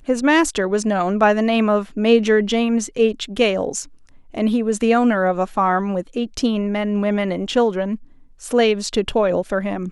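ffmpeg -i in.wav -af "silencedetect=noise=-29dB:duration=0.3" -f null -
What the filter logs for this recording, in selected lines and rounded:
silence_start: 3.84
silence_end: 4.35 | silence_duration: 0.51
silence_start: 7.96
silence_end: 8.44 | silence_duration: 0.48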